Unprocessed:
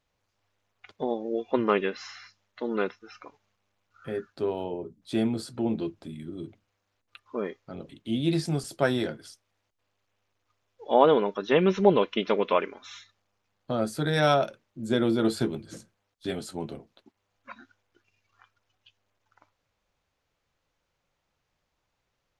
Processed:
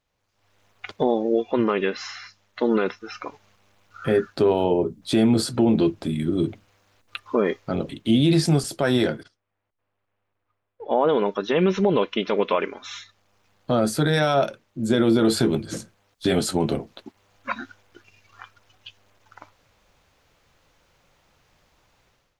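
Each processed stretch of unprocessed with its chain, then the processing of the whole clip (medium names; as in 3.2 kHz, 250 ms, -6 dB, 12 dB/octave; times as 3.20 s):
9.23–11.09 s: low-pass 2.1 kHz + gate -58 dBFS, range -15 dB
whole clip: level rider gain up to 16 dB; peak limiter -10 dBFS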